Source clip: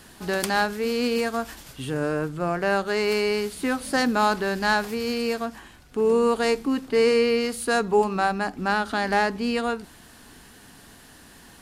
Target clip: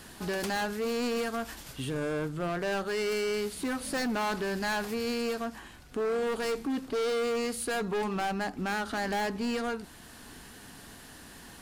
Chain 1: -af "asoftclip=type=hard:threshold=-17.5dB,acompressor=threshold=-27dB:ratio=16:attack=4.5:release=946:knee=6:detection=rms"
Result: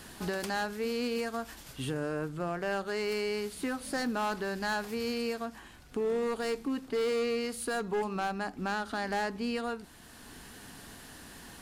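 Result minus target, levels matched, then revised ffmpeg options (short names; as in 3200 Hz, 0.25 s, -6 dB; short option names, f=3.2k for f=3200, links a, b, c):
hard clip: distortion -7 dB
-af "asoftclip=type=hard:threshold=-24dB,acompressor=threshold=-27dB:ratio=16:attack=4.5:release=946:knee=6:detection=rms"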